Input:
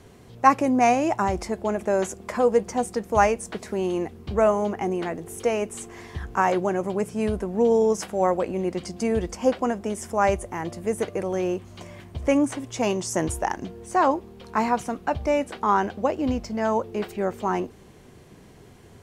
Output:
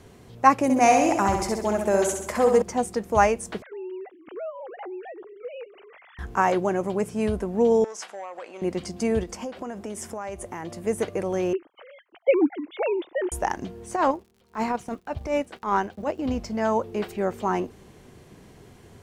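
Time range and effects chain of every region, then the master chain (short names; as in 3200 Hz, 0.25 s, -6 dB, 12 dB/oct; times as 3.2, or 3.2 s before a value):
0.63–2.62 high shelf 6300 Hz +9.5 dB + flutter echo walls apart 11.2 m, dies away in 0.73 s
3.62–6.19 sine-wave speech + compressor 3:1, threshold -37 dBFS
7.84–8.62 BPF 770–7300 Hz + compressor, threshold -31 dBFS + core saturation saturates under 860 Hz
9.23–10.87 low shelf 64 Hz -10.5 dB + compressor 10:1, threshold -29 dBFS
11.53–13.32 sine-wave speech + gate -54 dBFS, range -13 dB
13.95–16.36 gate -41 dBFS, range -12 dB + transient shaper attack -12 dB, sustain -8 dB + crackle 99/s -48 dBFS
whole clip: dry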